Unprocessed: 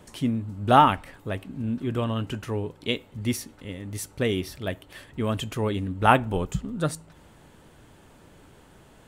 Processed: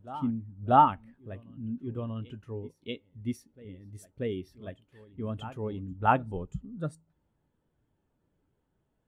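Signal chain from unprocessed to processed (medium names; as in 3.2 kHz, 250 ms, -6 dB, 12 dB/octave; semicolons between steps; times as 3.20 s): reverse echo 636 ms -13.5 dB; spectral contrast expander 1.5:1; trim -5 dB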